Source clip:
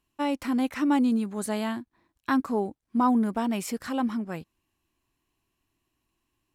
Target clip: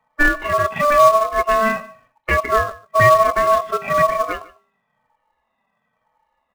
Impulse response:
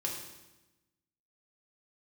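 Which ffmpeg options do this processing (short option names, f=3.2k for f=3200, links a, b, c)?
-filter_complex "[0:a]afftfilt=real='re*pow(10,20/40*sin(2*PI*(1.6*log(max(b,1)*sr/1024/100)/log(2)-(-1)*(pts-256)/sr)))':imag='im*pow(10,20/40*sin(2*PI*(1.6*log(max(b,1)*sr/1024/100)/log(2)-(-1)*(pts-256)/sr)))':win_size=1024:overlap=0.75,lowpass=f=1.6k:w=0.5412,lowpass=f=1.6k:w=1.3066,aecho=1:1:4.7:0.61,bandreject=f=238.7:t=h:w=4,bandreject=f=477.4:t=h:w=4,bandreject=f=716.1:t=h:w=4,bandreject=f=954.8:t=h:w=4,bandreject=f=1.1935k:t=h:w=4,bandreject=f=1.4322k:t=h:w=4,bandreject=f=1.6709k:t=h:w=4,bandreject=f=1.9096k:t=h:w=4,bandreject=f=2.1483k:t=h:w=4,bandreject=f=2.387k:t=h:w=4,bandreject=f=2.6257k:t=h:w=4,asplit=2[a][b];[b]alimiter=limit=-13.5dB:level=0:latency=1:release=139,volume=2dB[c];[a][c]amix=inputs=2:normalize=0,aeval=exprs='val(0)*sin(2*PI*880*n/s)':c=same,acrossover=split=700[d][e];[d]acrusher=bits=2:mode=log:mix=0:aa=0.000001[f];[e]crystalizer=i=3.5:c=0[g];[f][g]amix=inputs=2:normalize=0,aecho=1:1:149:0.0891"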